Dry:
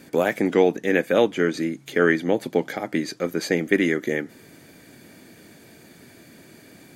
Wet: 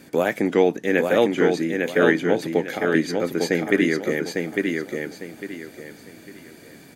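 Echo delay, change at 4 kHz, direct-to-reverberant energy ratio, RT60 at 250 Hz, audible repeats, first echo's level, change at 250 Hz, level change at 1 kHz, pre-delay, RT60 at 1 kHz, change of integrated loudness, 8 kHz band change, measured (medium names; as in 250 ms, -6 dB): 852 ms, +1.5 dB, no reverb, no reverb, 3, -4.0 dB, +2.0 dB, +1.5 dB, no reverb, no reverb, +1.0 dB, +1.5 dB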